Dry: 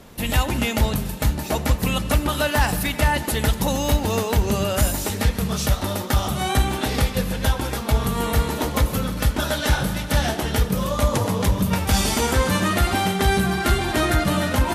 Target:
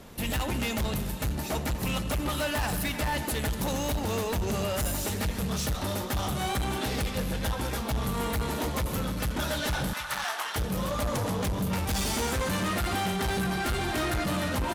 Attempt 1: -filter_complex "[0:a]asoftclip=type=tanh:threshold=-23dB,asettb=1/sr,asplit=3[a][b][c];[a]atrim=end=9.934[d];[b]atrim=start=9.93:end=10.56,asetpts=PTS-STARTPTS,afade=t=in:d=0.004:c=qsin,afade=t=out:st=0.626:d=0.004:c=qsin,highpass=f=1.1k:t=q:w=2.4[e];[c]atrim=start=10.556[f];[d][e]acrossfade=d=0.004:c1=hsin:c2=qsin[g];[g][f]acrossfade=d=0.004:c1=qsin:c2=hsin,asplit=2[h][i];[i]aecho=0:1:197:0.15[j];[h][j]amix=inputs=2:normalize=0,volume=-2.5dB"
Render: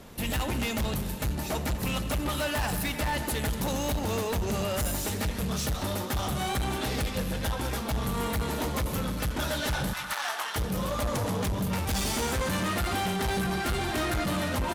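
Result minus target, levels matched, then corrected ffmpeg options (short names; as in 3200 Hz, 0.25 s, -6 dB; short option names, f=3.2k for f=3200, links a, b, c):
echo 0.111 s early
-filter_complex "[0:a]asoftclip=type=tanh:threshold=-23dB,asettb=1/sr,asplit=3[a][b][c];[a]atrim=end=9.934[d];[b]atrim=start=9.93:end=10.56,asetpts=PTS-STARTPTS,afade=t=in:d=0.004:c=qsin,afade=t=out:st=0.626:d=0.004:c=qsin,highpass=f=1.1k:t=q:w=2.4[e];[c]atrim=start=10.556[f];[d][e]acrossfade=d=0.004:c1=hsin:c2=qsin[g];[g][f]acrossfade=d=0.004:c1=qsin:c2=hsin,asplit=2[h][i];[i]aecho=0:1:308:0.15[j];[h][j]amix=inputs=2:normalize=0,volume=-2.5dB"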